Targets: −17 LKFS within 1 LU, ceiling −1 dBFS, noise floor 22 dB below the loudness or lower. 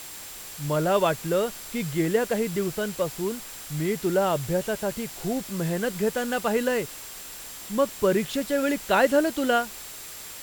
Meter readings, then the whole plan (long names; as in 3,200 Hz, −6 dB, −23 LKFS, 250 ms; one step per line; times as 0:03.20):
interfering tone 7,500 Hz; level of the tone −47 dBFS; background noise floor −40 dBFS; target noise floor −48 dBFS; integrated loudness −26.0 LKFS; sample peak −8.0 dBFS; target loudness −17.0 LKFS
→ notch filter 7,500 Hz, Q 30
broadband denoise 8 dB, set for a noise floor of −40 dBFS
level +9 dB
brickwall limiter −1 dBFS